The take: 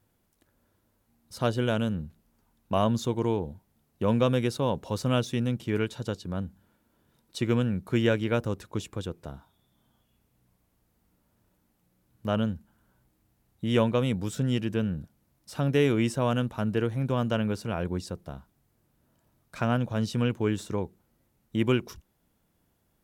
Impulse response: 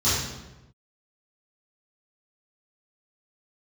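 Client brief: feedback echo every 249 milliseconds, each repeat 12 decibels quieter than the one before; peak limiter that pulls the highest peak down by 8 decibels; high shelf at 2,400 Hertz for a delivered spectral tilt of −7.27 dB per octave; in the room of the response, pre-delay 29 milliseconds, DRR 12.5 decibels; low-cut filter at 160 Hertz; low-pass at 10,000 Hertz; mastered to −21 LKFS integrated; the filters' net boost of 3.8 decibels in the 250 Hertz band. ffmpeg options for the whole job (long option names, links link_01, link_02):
-filter_complex "[0:a]highpass=160,lowpass=10000,equalizer=frequency=250:width_type=o:gain=5.5,highshelf=frequency=2400:gain=-7.5,alimiter=limit=-17dB:level=0:latency=1,aecho=1:1:249|498|747:0.251|0.0628|0.0157,asplit=2[link_01][link_02];[1:a]atrim=start_sample=2205,adelay=29[link_03];[link_02][link_03]afir=irnorm=-1:irlink=0,volume=-27.5dB[link_04];[link_01][link_04]amix=inputs=2:normalize=0,volume=7.5dB"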